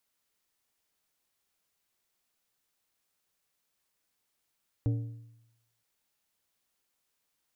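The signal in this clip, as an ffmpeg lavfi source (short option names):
-f lavfi -i "aevalsrc='0.0708*pow(10,-3*t/0.89)*sin(2*PI*115*t)+0.0266*pow(10,-3*t/0.676)*sin(2*PI*287.5*t)+0.01*pow(10,-3*t/0.587)*sin(2*PI*460*t)+0.00376*pow(10,-3*t/0.549)*sin(2*PI*575*t)+0.00141*pow(10,-3*t/0.508)*sin(2*PI*747.5*t)':d=0.97:s=44100"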